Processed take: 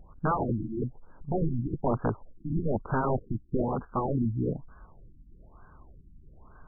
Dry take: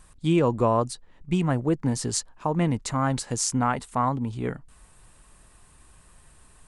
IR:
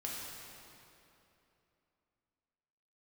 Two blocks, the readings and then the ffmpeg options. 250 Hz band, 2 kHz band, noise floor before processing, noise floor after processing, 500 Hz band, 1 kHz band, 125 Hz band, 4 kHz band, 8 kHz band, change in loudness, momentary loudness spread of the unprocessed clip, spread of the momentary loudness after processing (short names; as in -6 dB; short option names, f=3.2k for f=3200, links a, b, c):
-5.0 dB, -6.5 dB, -55 dBFS, -55 dBFS, -4.5 dB, -5.5 dB, -4.0 dB, under -40 dB, under -40 dB, -5.0 dB, 9 LU, 6 LU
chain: -af "lowpass=f=2.2k:t=q:w=3.1,aeval=exprs='(mod(10.6*val(0)+1,2)-1)/10.6':c=same,afftfilt=real='re*lt(b*sr/1024,330*pow(1700/330,0.5+0.5*sin(2*PI*1.1*pts/sr)))':imag='im*lt(b*sr/1024,330*pow(1700/330,0.5+0.5*sin(2*PI*1.1*pts/sr)))':win_size=1024:overlap=0.75,volume=3dB"